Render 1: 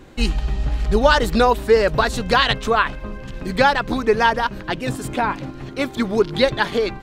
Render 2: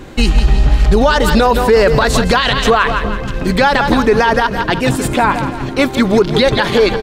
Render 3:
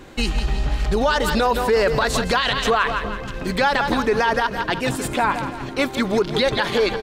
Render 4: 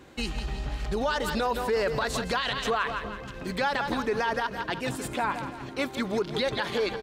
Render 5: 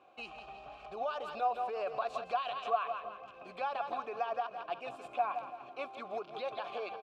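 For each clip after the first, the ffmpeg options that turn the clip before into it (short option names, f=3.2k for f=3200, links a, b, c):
-filter_complex "[0:a]asplit=2[a][b];[b]aecho=0:1:166|332|498|664:0.237|0.102|0.0438|0.0189[c];[a][c]amix=inputs=2:normalize=0,alimiter=level_in=12dB:limit=-1dB:release=50:level=0:latency=1,volume=-1dB"
-af "lowshelf=f=340:g=-5.5,volume=-6dB"
-af "highpass=46,volume=-8.5dB"
-filter_complex "[0:a]asplit=3[a][b][c];[a]bandpass=f=730:t=q:w=8,volume=0dB[d];[b]bandpass=f=1.09k:t=q:w=8,volume=-6dB[e];[c]bandpass=f=2.44k:t=q:w=8,volume=-9dB[f];[d][e][f]amix=inputs=3:normalize=0,equalizer=f=270:t=o:w=0.77:g=-2.5,volume=2.5dB"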